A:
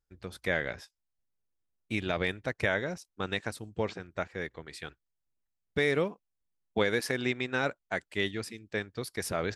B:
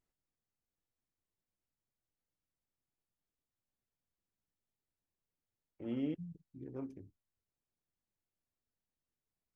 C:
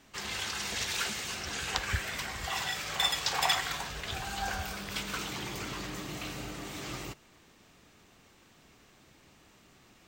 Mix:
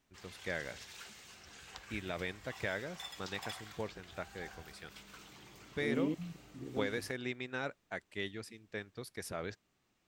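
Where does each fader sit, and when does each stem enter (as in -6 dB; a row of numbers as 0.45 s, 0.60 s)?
-9.0 dB, +2.0 dB, -18.0 dB; 0.00 s, 0.00 s, 0.00 s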